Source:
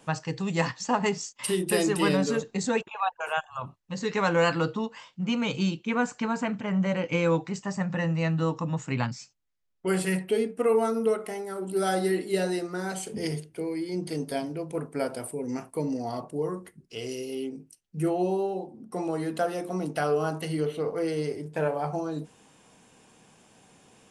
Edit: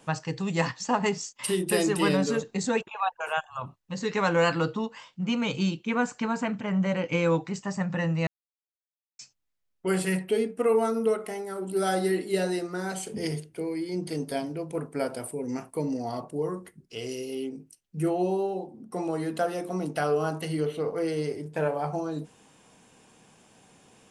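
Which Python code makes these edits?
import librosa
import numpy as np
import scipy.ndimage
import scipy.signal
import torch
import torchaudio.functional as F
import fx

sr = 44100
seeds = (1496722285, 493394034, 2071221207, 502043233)

y = fx.edit(x, sr, fx.silence(start_s=8.27, length_s=0.92), tone=tone)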